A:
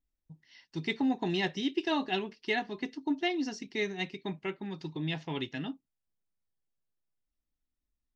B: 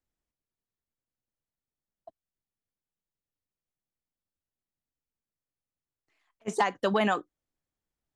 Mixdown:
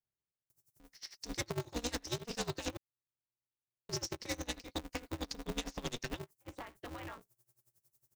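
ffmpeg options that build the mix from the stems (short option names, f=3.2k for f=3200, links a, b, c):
-filter_complex "[0:a]aeval=exprs='0.133*(cos(1*acos(clip(val(0)/0.133,-1,1)))-cos(1*PI/2))+0.0237*(cos(5*acos(clip(val(0)/0.133,-1,1)))-cos(5*PI/2))':c=same,aexciter=amount=4.6:drive=9.7:freq=4.8k,aeval=exprs='val(0)*pow(10,-22*(0.5-0.5*cos(2*PI*11*n/s))/20)':c=same,adelay=500,volume=-0.5dB,asplit=3[a][b][c];[a]atrim=end=2.77,asetpts=PTS-STARTPTS,afade=t=out:st=2.766:d=0.004:c=hsin[d];[b]atrim=start=2.77:end=3.89,asetpts=PTS-STARTPTS,volume=0[e];[c]atrim=start=3.89,asetpts=PTS-STARTPTS,afade=t=in:d=0.004:c=hsin[f];[d][e][f]concat=n=3:v=0:a=1[g];[1:a]lowpass=3.5k,equalizer=f=510:w=1.5:g=-6,acompressor=threshold=-33dB:ratio=2.5,volume=-11.5dB[h];[g][h]amix=inputs=2:normalize=0,acrossover=split=280|2500|7700[i][j][k][l];[i]acompressor=threshold=-39dB:ratio=4[m];[j]acompressor=threshold=-43dB:ratio=4[n];[k]acompressor=threshold=-42dB:ratio=4[o];[l]acompressor=threshold=-60dB:ratio=4[p];[m][n][o][p]amix=inputs=4:normalize=0,aeval=exprs='val(0)*sgn(sin(2*PI*120*n/s))':c=same"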